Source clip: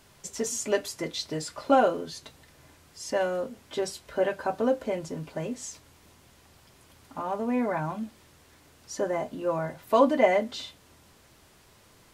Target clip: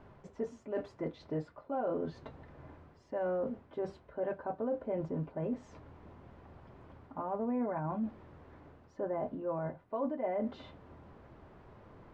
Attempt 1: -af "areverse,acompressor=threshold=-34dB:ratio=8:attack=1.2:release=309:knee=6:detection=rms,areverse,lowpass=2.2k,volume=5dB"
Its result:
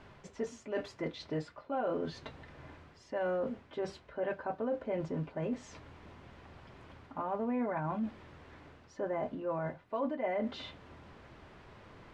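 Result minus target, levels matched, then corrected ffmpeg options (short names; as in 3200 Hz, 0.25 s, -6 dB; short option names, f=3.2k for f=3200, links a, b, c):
2000 Hz band +6.5 dB
-af "areverse,acompressor=threshold=-34dB:ratio=8:attack=1.2:release=309:knee=6:detection=rms,areverse,lowpass=1.1k,volume=5dB"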